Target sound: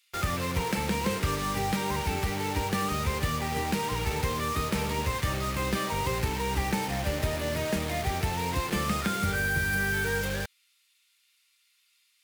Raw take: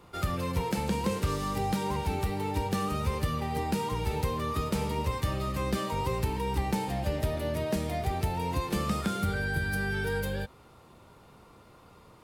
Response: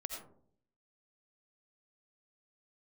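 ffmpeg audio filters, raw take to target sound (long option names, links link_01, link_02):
-filter_complex "[0:a]equalizer=frequency=2000:width=1.3:gain=7.5,acrossover=split=2800[link_01][link_02];[link_01]acrusher=bits=5:mix=0:aa=0.000001[link_03];[link_03][link_02]amix=inputs=2:normalize=0"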